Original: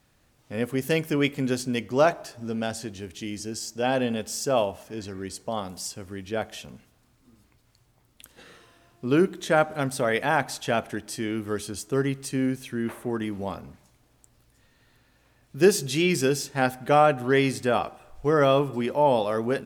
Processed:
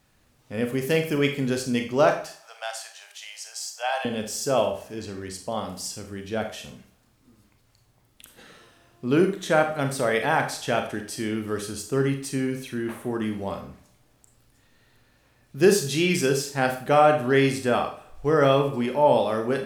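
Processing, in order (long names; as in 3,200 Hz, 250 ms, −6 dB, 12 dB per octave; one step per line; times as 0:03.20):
0:02.27–0:04.05: Butterworth high-pass 650 Hz 48 dB per octave
four-comb reverb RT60 0.42 s, combs from 29 ms, DRR 5 dB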